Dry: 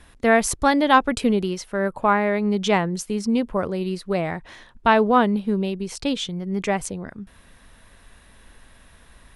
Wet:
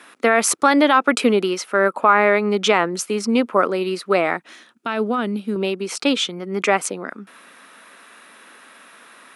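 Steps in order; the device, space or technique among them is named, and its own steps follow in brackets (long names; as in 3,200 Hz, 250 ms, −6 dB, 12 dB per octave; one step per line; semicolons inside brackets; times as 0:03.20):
laptop speaker (high-pass filter 250 Hz 24 dB per octave; parametric band 1,300 Hz +10 dB 0.37 octaves; parametric band 2,400 Hz +5 dB 0.4 octaves; brickwall limiter −9.5 dBFS, peak gain reduction 11.5 dB)
0:04.37–0:05.56: octave-band graphic EQ 500/1,000/2,000/4,000 Hz −7/−11/−6/−3 dB
level +6 dB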